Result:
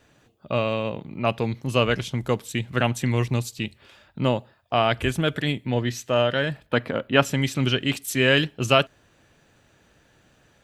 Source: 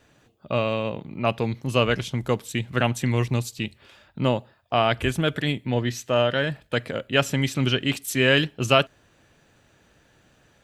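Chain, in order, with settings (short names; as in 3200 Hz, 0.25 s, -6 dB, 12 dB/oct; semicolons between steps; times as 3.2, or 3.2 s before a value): 6.66–7.25 graphic EQ 250/1000/8000 Hz +5/+7/-10 dB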